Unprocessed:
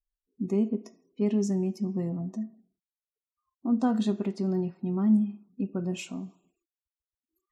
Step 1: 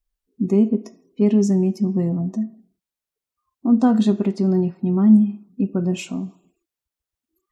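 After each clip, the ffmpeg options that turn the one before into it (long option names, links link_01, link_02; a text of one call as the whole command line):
ffmpeg -i in.wav -af "lowshelf=frequency=470:gain=4,volume=6.5dB" out.wav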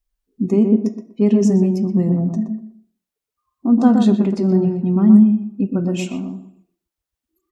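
ffmpeg -i in.wav -filter_complex "[0:a]asplit=2[link_01][link_02];[link_02]adelay=122,lowpass=frequency=1400:poles=1,volume=-4dB,asplit=2[link_03][link_04];[link_04]adelay=122,lowpass=frequency=1400:poles=1,volume=0.24,asplit=2[link_05][link_06];[link_06]adelay=122,lowpass=frequency=1400:poles=1,volume=0.24[link_07];[link_01][link_03][link_05][link_07]amix=inputs=4:normalize=0,volume=1.5dB" out.wav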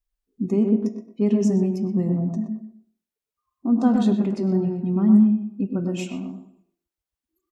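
ffmpeg -i in.wav -filter_complex "[0:a]asplit=2[link_01][link_02];[link_02]adelay=100,highpass=300,lowpass=3400,asoftclip=type=hard:threshold=-11dB,volume=-10dB[link_03];[link_01][link_03]amix=inputs=2:normalize=0,volume=-5.5dB" out.wav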